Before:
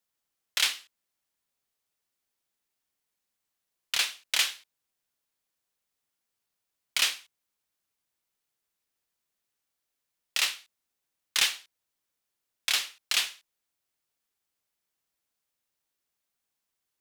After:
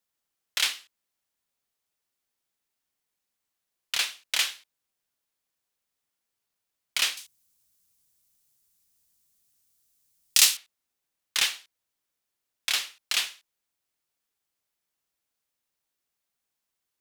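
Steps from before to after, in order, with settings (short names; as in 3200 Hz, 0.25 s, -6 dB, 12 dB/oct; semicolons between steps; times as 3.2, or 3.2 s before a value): 7.17–10.57 tone controls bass +13 dB, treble +15 dB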